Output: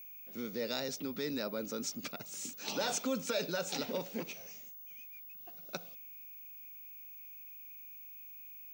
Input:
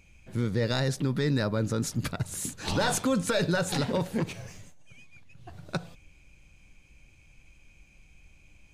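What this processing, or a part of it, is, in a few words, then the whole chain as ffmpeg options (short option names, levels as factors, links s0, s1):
old television with a line whistle: -af "highpass=f=230:w=0.5412,highpass=f=230:w=1.3066,equalizer=f=340:t=q:w=4:g=-5,equalizer=f=1000:t=q:w=4:g=-6,equalizer=f=1700:t=q:w=4:g=-7,equalizer=f=2500:t=q:w=4:g=4,equalizer=f=5800:t=q:w=4:g=8,lowpass=f=7800:w=0.5412,lowpass=f=7800:w=1.3066,aeval=exprs='val(0)+0.00891*sin(2*PI*15625*n/s)':c=same,volume=0.473"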